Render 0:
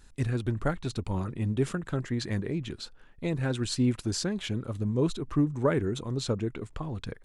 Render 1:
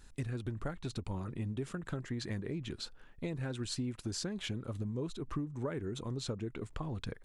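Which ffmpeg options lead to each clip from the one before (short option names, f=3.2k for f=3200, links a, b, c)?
-af "acompressor=threshold=-33dB:ratio=6,volume=-1.5dB"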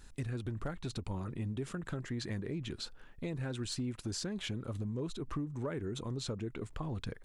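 -filter_complex "[0:a]asplit=2[a][b];[b]alimiter=level_in=11dB:limit=-24dB:level=0:latency=1,volume=-11dB,volume=-1dB[c];[a][c]amix=inputs=2:normalize=0,asoftclip=type=hard:threshold=-25.5dB,volume=-3.5dB"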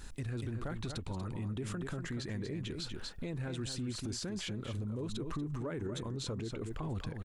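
-af "aecho=1:1:239:0.355,alimiter=level_in=14dB:limit=-24dB:level=0:latency=1:release=101,volume=-14dB,volume=7dB"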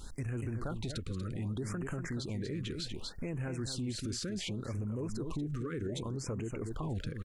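-af "afftfilt=real='re*(1-between(b*sr/1024,760*pow(4400/760,0.5+0.5*sin(2*PI*0.66*pts/sr))/1.41,760*pow(4400/760,0.5+0.5*sin(2*PI*0.66*pts/sr))*1.41))':imag='im*(1-between(b*sr/1024,760*pow(4400/760,0.5+0.5*sin(2*PI*0.66*pts/sr))/1.41,760*pow(4400/760,0.5+0.5*sin(2*PI*0.66*pts/sr))*1.41))':win_size=1024:overlap=0.75,volume=1.5dB"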